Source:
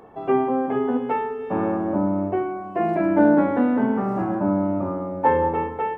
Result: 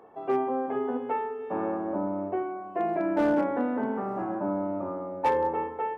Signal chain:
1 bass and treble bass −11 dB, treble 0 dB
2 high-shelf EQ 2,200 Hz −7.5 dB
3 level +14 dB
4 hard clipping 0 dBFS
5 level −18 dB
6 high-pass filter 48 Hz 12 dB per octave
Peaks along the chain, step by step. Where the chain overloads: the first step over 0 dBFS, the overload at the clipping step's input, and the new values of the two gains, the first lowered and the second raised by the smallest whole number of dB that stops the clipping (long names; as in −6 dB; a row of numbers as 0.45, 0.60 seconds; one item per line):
−6.5, −7.0, +7.0, 0.0, −18.0, −16.5 dBFS
step 3, 7.0 dB
step 3 +7 dB, step 5 −11 dB